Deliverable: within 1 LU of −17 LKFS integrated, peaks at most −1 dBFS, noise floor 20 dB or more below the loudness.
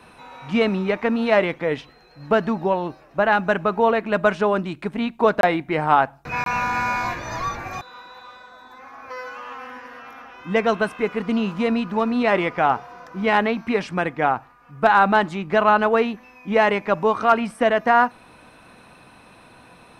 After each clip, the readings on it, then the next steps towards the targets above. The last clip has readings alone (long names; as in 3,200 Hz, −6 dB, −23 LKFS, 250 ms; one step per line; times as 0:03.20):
number of dropouts 2; longest dropout 22 ms; integrated loudness −21.0 LKFS; sample peak −3.0 dBFS; target loudness −17.0 LKFS
→ repair the gap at 0:05.41/0:06.44, 22 ms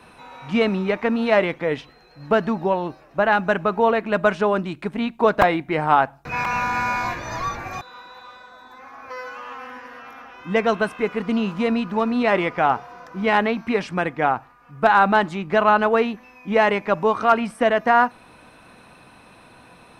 number of dropouts 0; integrated loudness −21.0 LKFS; sample peak −1.5 dBFS; target loudness −17.0 LKFS
→ level +4 dB
brickwall limiter −1 dBFS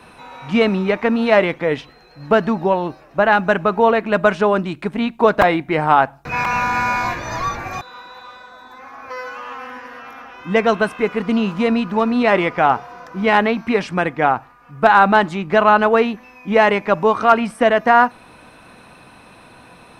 integrated loudness −17.0 LKFS; sample peak −1.0 dBFS; background noise floor −46 dBFS